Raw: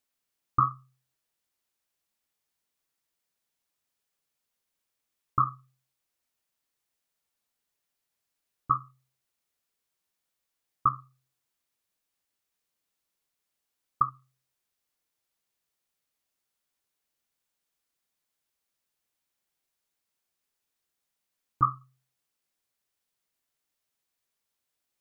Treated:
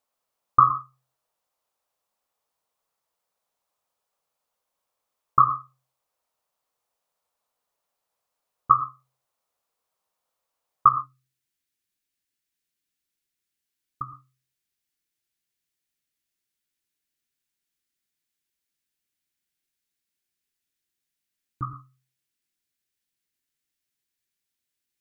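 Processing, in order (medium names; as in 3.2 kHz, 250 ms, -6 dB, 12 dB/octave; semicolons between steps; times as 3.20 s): high-order bell 770 Hz +10.5 dB, from 10.92 s -9 dB; gated-style reverb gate 140 ms rising, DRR 9.5 dB; trim -1 dB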